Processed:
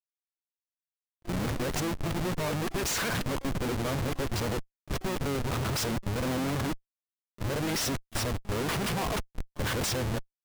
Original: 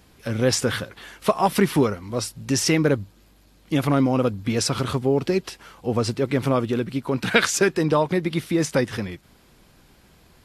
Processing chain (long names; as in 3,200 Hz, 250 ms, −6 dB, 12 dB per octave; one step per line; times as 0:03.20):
played backwards from end to start
comparator with hysteresis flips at −30.5 dBFS
pitch-shifted copies added −7 semitones −9 dB, +12 semitones −16 dB
level −7 dB